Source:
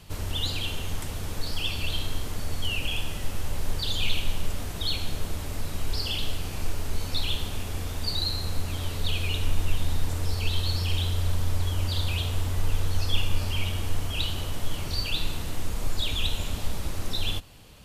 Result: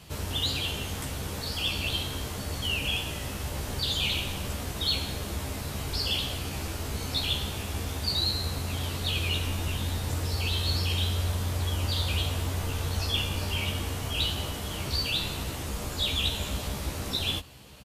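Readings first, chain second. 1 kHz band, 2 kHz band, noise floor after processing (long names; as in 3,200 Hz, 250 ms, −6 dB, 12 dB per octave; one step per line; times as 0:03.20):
+2.0 dB, +1.5 dB, −36 dBFS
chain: high-pass filter 57 Hz
double-tracking delay 15 ms −2.5 dB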